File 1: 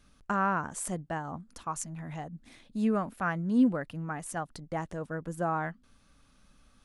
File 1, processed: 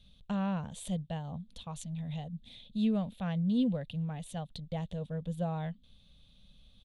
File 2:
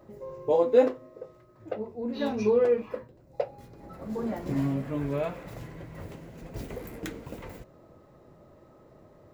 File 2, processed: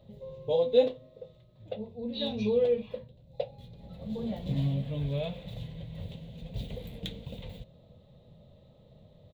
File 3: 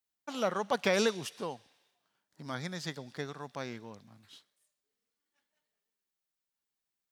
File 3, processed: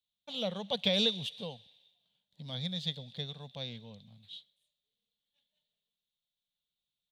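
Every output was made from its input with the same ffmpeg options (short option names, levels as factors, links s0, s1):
-af "firequalizer=gain_entry='entry(190,0);entry(330,-20);entry(490,-5);entry(1300,-22);entry(3600,10);entry(5100,-13)':delay=0.05:min_phase=1,volume=1.41"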